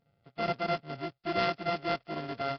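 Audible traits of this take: a buzz of ramps at a fixed pitch in blocks of 64 samples; Nellymoser

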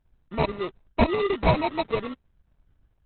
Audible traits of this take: aliases and images of a low sample rate 1.6 kHz, jitter 0%; tremolo saw up 8.7 Hz, depth 40%; Opus

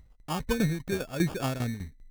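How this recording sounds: phasing stages 4, 0.95 Hz, lowest notch 750–2600 Hz; tremolo saw down 5 Hz, depth 75%; aliases and images of a low sample rate 2 kHz, jitter 0%

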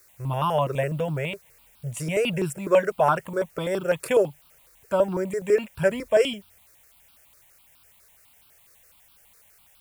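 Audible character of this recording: a quantiser's noise floor 10-bit, dither triangular; notches that jump at a steady rate 12 Hz 830–1900 Hz

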